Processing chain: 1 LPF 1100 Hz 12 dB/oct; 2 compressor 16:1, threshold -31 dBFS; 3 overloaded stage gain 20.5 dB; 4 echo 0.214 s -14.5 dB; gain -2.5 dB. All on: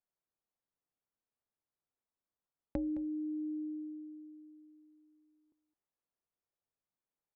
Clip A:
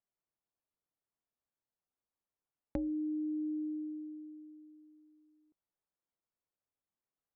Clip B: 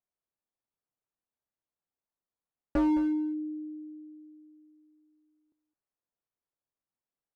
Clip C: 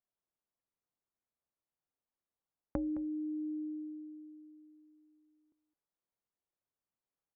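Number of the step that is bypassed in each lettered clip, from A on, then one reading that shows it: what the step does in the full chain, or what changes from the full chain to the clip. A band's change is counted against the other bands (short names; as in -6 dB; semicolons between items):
4, loudness change +1.0 LU; 2, mean gain reduction 3.5 dB; 3, distortion -28 dB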